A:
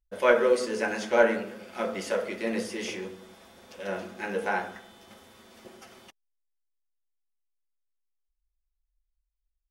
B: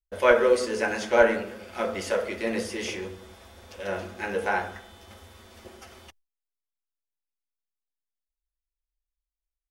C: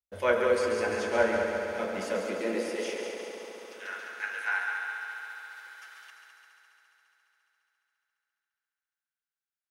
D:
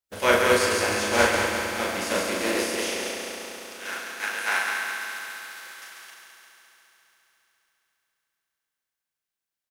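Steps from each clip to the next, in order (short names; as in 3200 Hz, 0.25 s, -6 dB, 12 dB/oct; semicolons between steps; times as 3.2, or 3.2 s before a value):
gate with hold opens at -46 dBFS; resonant low shelf 110 Hz +8.5 dB, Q 3; gain +2.5 dB
high-pass sweep 100 Hz -> 1500 Hz, 1.58–3.85; multi-head echo 69 ms, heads second and third, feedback 73%, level -7 dB; gain -7 dB
spectral contrast lowered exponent 0.6; doubler 38 ms -3.5 dB; gain +4 dB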